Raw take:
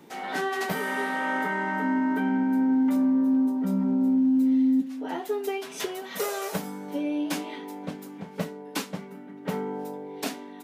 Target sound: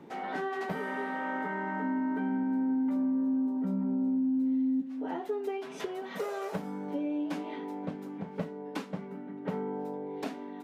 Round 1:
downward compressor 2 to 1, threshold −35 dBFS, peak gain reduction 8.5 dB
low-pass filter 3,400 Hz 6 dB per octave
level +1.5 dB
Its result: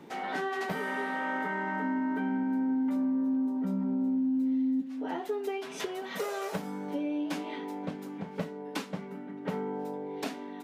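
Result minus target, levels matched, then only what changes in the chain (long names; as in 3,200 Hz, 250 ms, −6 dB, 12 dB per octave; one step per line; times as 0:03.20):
4,000 Hz band +5.5 dB
change: low-pass filter 1,300 Hz 6 dB per octave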